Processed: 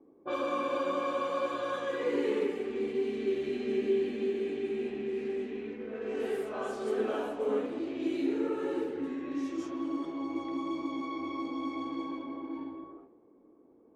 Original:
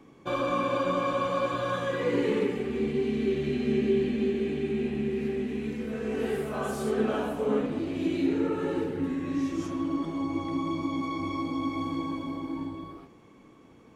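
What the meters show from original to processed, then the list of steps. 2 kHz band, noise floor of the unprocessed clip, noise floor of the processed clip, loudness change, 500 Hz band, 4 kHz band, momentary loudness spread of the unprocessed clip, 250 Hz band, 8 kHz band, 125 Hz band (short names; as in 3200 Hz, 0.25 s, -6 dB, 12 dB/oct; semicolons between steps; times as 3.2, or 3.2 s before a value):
-5.0 dB, -54 dBFS, -60 dBFS, -4.0 dB, -2.5 dB, -5.0 dB, 6 LU, -6.0 dB, n/a, -17.5 dB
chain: resonant low shelf 220 Hz -12.5 dB, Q 1.5; low-pass opened by the level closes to 540 Hz, open at -24 dBFS; gain -5 dB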